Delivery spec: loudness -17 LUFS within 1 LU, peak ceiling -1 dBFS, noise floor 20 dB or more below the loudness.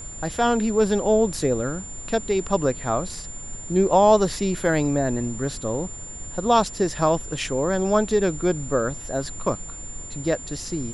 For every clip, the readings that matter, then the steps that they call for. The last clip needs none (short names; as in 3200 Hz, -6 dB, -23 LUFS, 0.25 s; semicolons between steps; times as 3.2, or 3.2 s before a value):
steady tone 7200 Hz; tone level -36 dBFS; noise floor -37 dBFS; noise floor target -43 dBFS; loudness -23.0 LUFS; peak -5.5 dBFS; loudness target -17.0 LUFS
-> notch 7200 Hz, Q 30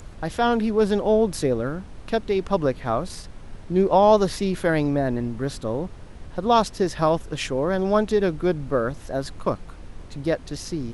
steady tone none; noise floor -42 dBFS; noise floor target -43 dBFS
-> noise print and reduce 6 dB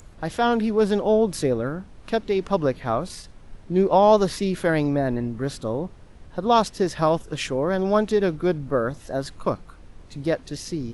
noise floor -46 dBFS; loudness -23.0 LUFS; peak -5.5 dBFS; loudness target -17.0 LUFS
-> gain +6 dB; limiter -1 dBFS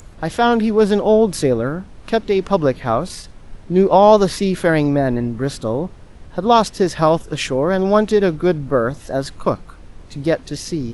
loudness -17.0 LUFS; peak -1.0 dBFS; noise floor -40 dBFS